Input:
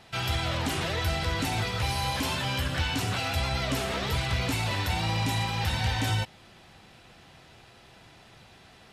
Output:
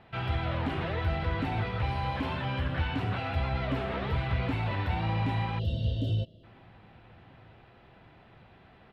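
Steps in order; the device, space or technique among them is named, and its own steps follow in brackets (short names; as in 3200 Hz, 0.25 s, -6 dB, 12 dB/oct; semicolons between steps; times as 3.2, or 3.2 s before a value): shout across a valley (air absorption 480 m; outdoor echo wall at 220 m, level -30 dB); spectral gain 5.59–6.44, 690–2700 Hz -29 dB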